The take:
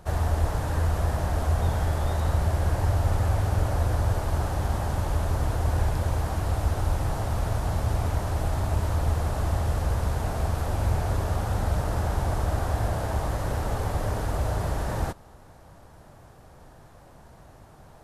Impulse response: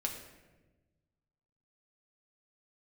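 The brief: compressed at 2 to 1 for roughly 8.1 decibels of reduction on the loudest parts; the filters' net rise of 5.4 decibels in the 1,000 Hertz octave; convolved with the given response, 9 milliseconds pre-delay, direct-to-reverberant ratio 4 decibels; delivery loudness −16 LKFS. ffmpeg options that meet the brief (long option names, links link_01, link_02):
-filter_complex "[0:a]equalizer=frequency=1000:width_type=o:gain=7,acompressor=threshold=-34dB:ratio=2,asplit=2[link_01][link_02];[1:a]atrim=start_sample=2205,adelay=9[link_03];[link_02][link_03]afir=irnorm=-1:irlink=0,volume=-6dB[link_04];[link_01][link_04]amix=inputs=2:normalize=0,volume=15.5dB"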